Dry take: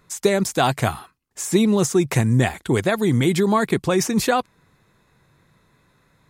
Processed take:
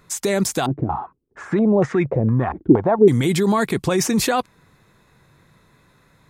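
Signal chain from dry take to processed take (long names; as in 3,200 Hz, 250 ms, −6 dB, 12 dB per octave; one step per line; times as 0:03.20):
brickwall limiter −15 dBFS, peak gain reduction 10 dB
0:00.66–0:03.08: low-pass on a step sequencer 4.3 Hz 320–1,900 Hz
level +4 dB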